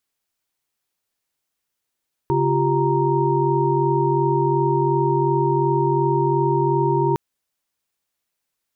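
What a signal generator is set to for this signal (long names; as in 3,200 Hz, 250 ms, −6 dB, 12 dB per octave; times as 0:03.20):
held notes C#3/F4/G4/A#5 sine, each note −21.5 dBFS 4.86 s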